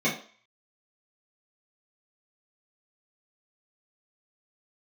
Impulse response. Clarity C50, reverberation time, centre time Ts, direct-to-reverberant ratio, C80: 8.5 dB, 0.45 s, 26 ms, −10.0 dB, 13.5 dB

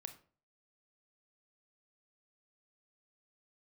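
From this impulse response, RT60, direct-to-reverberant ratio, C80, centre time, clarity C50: 0.45 s, 7.5 dB, 17.0 dB, 9 ms, 12.0 dB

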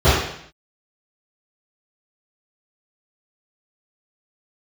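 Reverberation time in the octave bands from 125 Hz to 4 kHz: 0.70, 0.70, 0.65, 0.65, 0.70, 0.70 seconds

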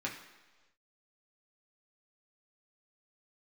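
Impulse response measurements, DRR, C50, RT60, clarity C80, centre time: −3.0 dB, 7.0 dB, 1.3 s, 9.5 dB, 29 ms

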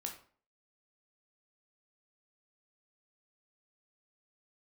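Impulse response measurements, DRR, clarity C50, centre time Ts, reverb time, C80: 2.0 dB, 8.0 dB, 18 ms, 0.45 s, 12.5 dB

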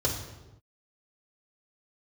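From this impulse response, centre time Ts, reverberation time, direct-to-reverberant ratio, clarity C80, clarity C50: 30 ms, non-exponential decay, −1.0 dB, 8.5 dB, 6.5 dB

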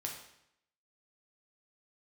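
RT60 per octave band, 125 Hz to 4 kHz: 0.85, 0.80, 0.75, 0.75, 0.75, 0.70 seconds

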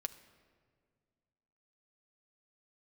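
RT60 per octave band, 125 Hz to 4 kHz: 2.6, 2.4, 2.1, 1.7, 1.5, 1.1 seconds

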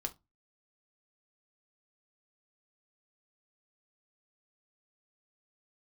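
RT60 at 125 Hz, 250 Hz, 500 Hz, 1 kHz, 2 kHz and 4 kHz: 0.40, 0.30, 0.20, 0.20, 0.15, 0.20 seconds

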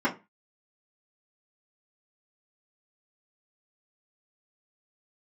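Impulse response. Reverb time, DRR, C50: 0.25 s, −9.5 dB, 15.0 dB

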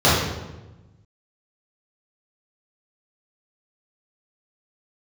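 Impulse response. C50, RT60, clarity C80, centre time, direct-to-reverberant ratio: 0.0 dB, 1.1 s, 3.5 dB, 72 ms, −10.0 dB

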